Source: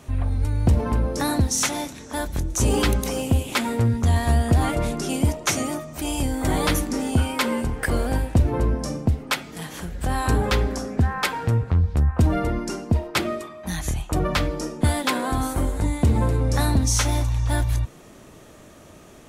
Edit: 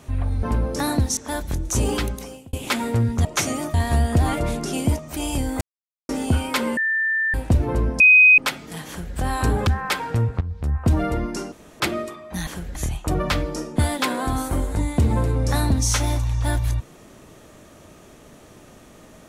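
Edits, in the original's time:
0.43–0.84 s: delete
1.58–2.02 s: delete
2.56–3.38 s: fade out
5.35–5.84 s: move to 4.10 s
6.46–6.94 s: mute
7.62–8.19 s: bleep 1.78 kHz -18.5 dBFS
8.85–9.23 s: bleep 2.51 kHz -8 dBFS
9.73–10.01 s: copy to 13.80 s
10.52–11.00 s: delete
11.74–12.24 s: fade in, from -14.5 dB
12.85–13.13 s: room tone

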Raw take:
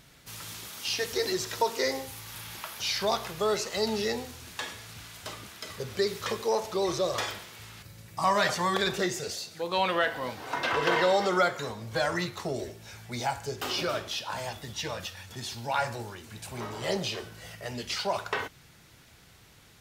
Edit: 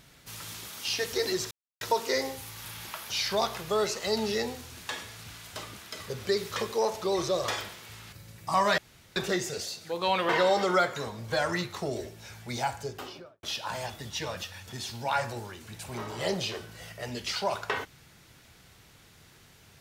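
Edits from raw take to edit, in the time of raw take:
1.51 s: insert silence 0.30 s
8.48–8.86 s: room tone
9.99–10.92 s: delete
13.31–14.06 s: studio fade out

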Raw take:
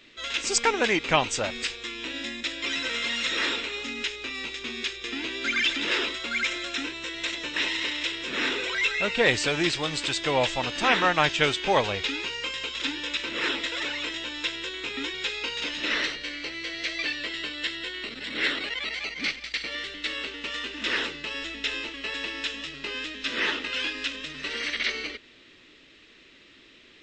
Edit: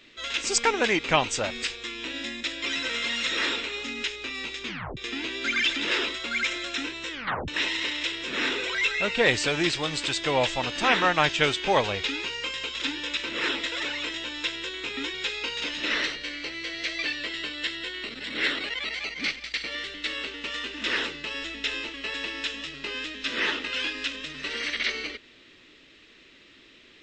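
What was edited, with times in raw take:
4.67 s: tape stop 0.30 s
7.11 s: tape stop 0.37 s

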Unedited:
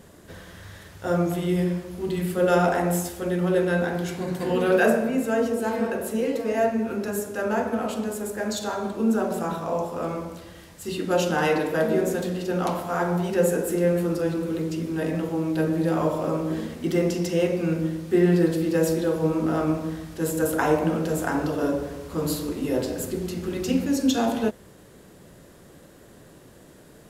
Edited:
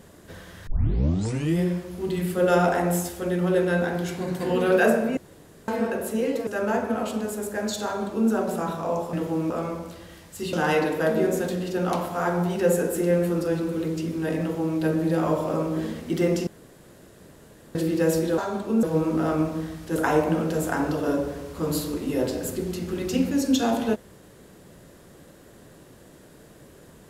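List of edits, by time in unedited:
0.67 s: tape start 0.92 s
5.17–5.68 s: room tone
6.47–7.30 s: delete
8.68–9.13 s: copy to 19.12 s
10.99–11.27 s: delete
15.15–15.52 s: copy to 9.96 s
17.21–18.49 s: room tone
20.25–20.51 s: delete

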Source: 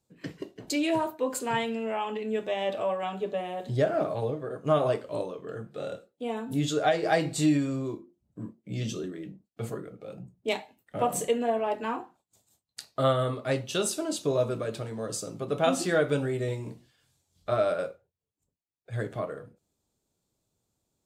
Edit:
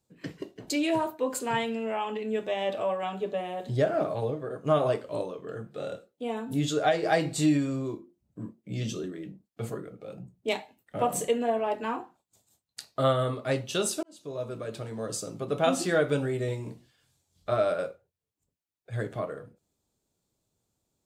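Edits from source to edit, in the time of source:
14.03–15.01 s: fade in

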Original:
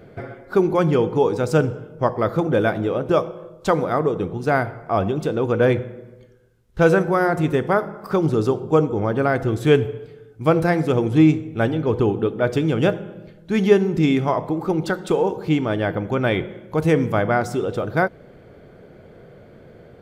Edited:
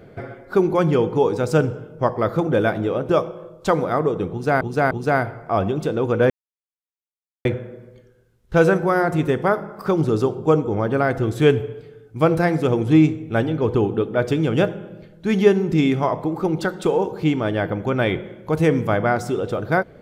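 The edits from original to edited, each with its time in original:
4.31–4.61 s: loop, 3 plays
5.70 s: insert silence 1.15 s

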